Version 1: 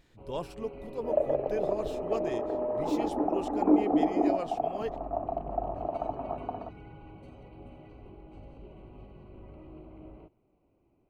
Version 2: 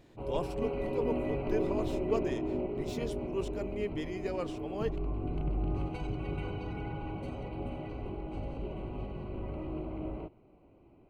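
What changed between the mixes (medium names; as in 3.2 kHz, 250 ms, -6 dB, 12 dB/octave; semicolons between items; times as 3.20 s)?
first sound +10.0 dB; second sound: muted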